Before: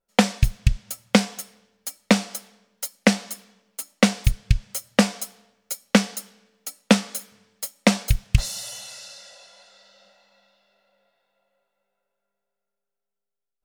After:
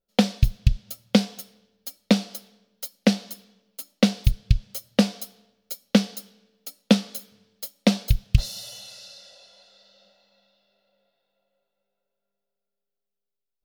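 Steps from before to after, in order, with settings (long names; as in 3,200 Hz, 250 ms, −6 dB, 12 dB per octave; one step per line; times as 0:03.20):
octave-band graphic EQ 1,000/2,000/4,000/8,000 Hz −8/−8/+4/−11 dB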